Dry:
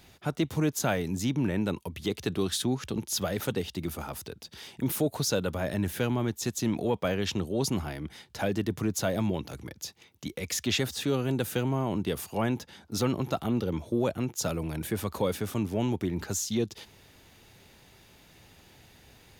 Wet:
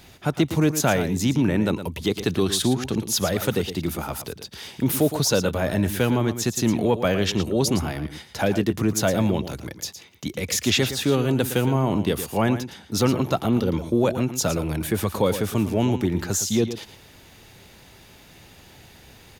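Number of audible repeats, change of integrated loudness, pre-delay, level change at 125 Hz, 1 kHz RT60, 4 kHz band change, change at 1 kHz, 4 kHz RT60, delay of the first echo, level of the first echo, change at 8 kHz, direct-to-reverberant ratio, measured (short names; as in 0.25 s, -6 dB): 1, +7.5 dB, none, +7.0 dB, none, +7.5 dB, +7.5 dB, none, 0.113 s, -11.0 dB, +7.5 dB, none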